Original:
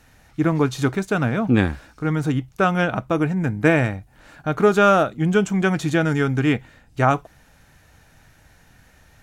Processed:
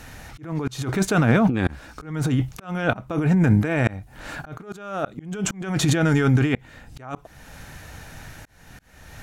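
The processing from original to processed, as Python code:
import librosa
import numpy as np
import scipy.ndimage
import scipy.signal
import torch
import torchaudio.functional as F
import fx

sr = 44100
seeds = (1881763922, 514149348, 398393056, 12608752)

y = fx.over_compress(x, sr, threshold_db=-25.0, ratio=-1.0)
y = fx.auto_swell(y, sr, attack_ms=434.0)
y = y * librosa.db_to_amplitude(6.5)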